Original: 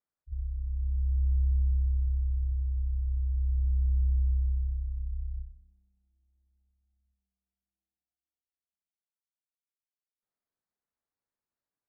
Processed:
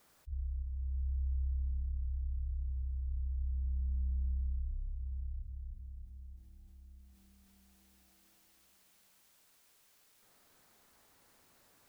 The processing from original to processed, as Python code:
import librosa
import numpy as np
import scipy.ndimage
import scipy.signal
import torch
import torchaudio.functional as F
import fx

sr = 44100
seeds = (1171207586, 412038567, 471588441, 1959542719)

y = fx.echo_feedback(x, sr, ms=313, feedback_pct=42, wet_db=-5.5)
y = fx.env_flatten(y, sr, amount_pct=50)
y = F.gain(torch.from_numpy(y), -7.5).numpy()